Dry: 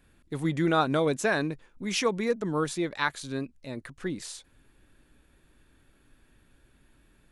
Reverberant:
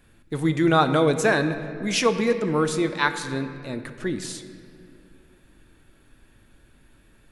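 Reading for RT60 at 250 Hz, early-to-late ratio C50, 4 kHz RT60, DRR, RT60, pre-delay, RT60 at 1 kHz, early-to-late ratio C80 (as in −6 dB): 3.2 s, 10.0 dB, 1.5 s, 8.0 dB, 2.5 s, 9 ms, 2.1 s, 11.0 dB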